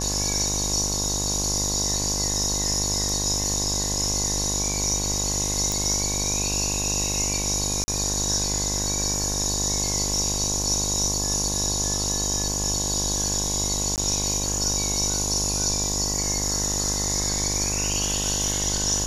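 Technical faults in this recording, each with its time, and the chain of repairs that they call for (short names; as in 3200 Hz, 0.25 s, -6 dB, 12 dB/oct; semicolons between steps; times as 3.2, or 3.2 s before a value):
buzz 50 Hz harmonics 22 -30 dBFS
5.72 pop
7.84–7.88 gap 40 ms
13.96–13.98 gap 18 ms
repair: de-click; de-hum 50 Hz, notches 22; interpolate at 7.84, 40 ms; interpolate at 13.96, 18 ms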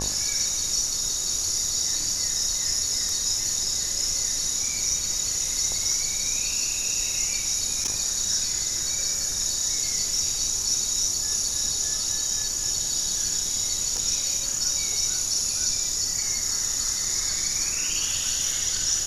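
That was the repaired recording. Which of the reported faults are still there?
none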